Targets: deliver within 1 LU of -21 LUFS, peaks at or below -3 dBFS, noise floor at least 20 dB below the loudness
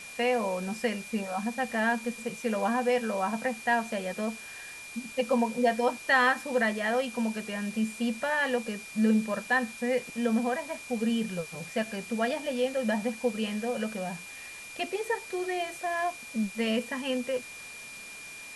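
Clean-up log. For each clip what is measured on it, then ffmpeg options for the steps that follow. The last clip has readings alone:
steady tone 2400 Hz; tone level -43 dBFS; noise floor -44 dBFS; noise floor target -50 dBFS; loudness -29.5 LUFS; peak -12.5 dBFS; loudness target -21.0 LUFS
-> -af "bandreject=f=2.4k:w=30"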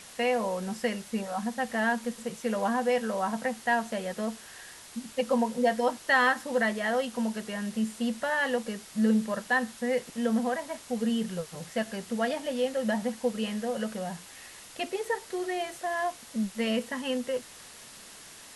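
steady tone none; noise floor -49 dBFS; noise floor target -50 dBFS
-> -af "afftdn=nr=6:nf=-49"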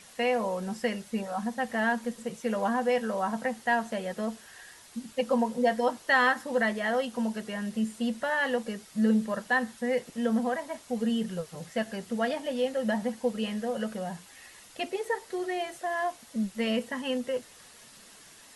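noise floor -53 dBFS; loudness -30.0 LUFS; peak -12.5 dBFS; loudness target -21.0 LUFS
-> -af "volume=9dB"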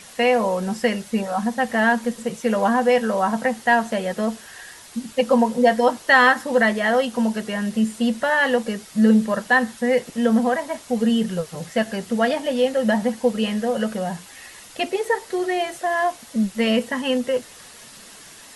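loudness -21.0 LUFS; peak -3.5 dBFS; noise floor -44 dBFS

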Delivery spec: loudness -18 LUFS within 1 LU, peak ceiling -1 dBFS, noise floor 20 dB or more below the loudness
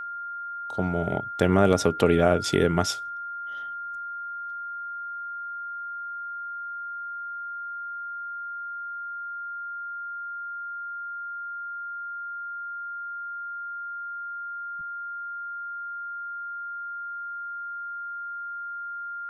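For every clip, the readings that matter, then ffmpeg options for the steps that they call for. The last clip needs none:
steady tone 1400 Hz; tone level -32 dBFS; loudness -30.0 LUFS; peak -5.0 dBFS; loudness target -18.0 LUFS
-> -af "bandreject=f=1.4k:w=30"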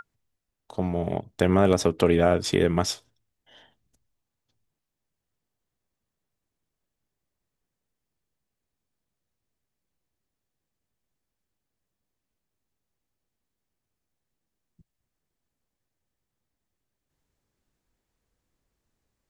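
steady tone none; loudness -23.5 LUFS; peak -5.5 dBFS; loudness target -18.0 LUFS
-> -af "volume=5.5dB,alimiter=limit=-1dB:level=0:latency=1"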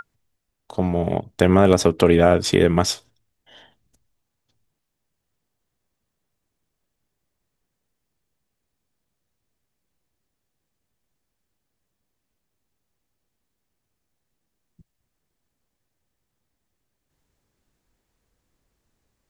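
loudness -18.0 LUFS; peak -1.0 dBFS; noise floor -79 dBFS

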